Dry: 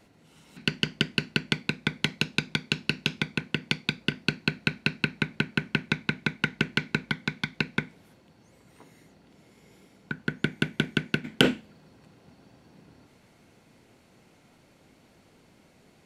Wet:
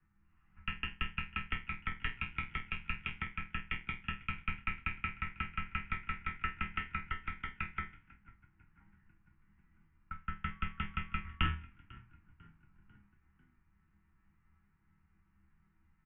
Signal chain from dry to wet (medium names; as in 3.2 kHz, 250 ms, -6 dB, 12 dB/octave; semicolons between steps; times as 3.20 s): peaking EQ 620 Hz -13.5 dB 1.3 oct; chord resonator B2 sus4, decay 0.28 s; on a send: frequency-shifting echo 496 ms, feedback 56%, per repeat +41 Hz, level -22 dB; 10.49–11.45 s: on the sum: whistle 1.3 kHz -68 dBFS; level-controlled noise filter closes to 1.2 kHz, open at -43.5 dBFS; in parallel at -8 dB: sample-and-hold 32×; on the sum: static phaser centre 1.8 kHz, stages 4; mistuned SSB -170 Hz 170–3300 Hz; trim +8 dB